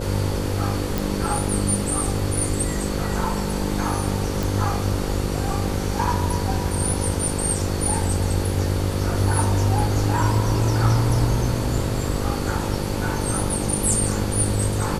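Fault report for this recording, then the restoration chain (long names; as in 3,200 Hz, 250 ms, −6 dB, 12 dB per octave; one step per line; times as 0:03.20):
mains buzz 50 Hz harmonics 11 −27 dBFS
0:00.98: click
0:04.43: click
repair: click removal
hum removal 50 Hz, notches 11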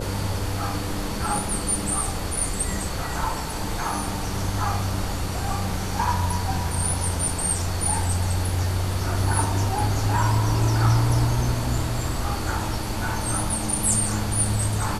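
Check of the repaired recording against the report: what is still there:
none of them is left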